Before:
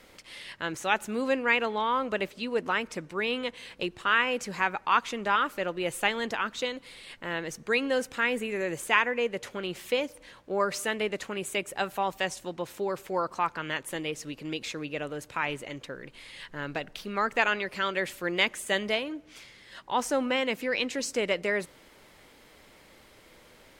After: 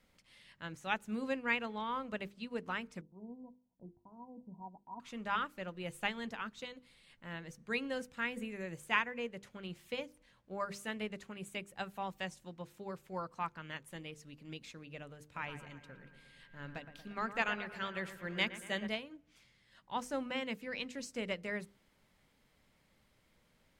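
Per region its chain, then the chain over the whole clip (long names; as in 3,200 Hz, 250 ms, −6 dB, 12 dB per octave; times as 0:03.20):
0:03.01–0:05.00: Chebyshev low-pass with heavy ripple 1,000 Hz, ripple 9 dB + noise gate −56 dBFS, range −11 dB
0:15.34–0:18.86: steady tone 1,600 Hz −46 dBFS + delay with a low-pass on its return 116 ms, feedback 66%, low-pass 2,400 Hz, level −9 dB
whole clip: low shelf with overshoot 260 Hz +7 dB, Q 1.5; mains-hum notches 50/100/150/200/250/300/350/400/450/500 Hz; expander for the loud parts 1.5 to 1, over −40 dBFS; level −7.5 dB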